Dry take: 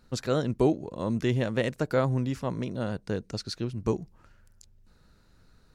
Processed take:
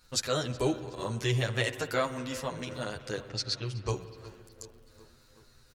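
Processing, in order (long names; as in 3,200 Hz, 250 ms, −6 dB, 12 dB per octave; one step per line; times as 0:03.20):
surface crackle 25 per second −56 dBFS
0:03.29–0:03.93: low-pass that shuts in the quiet parts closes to 1,800 Hz, open at −25 dBFS
drawn EQ curve 120 Hz 0 dB, 200 Hz −11 dB, 310 Hz −4 dB, 6,500 Hz +12 dB
on a send: feedback echo with a low-pass in the loop 371 ms, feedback 67%, low-pass 4,400 Hz, level −18 dB
on the sum: spring reverb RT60 2.4 s, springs 56 ms, chirp 80 ms, DRR 12.5 dB
barber-pole flanger 9.1 ms −0.42 Hz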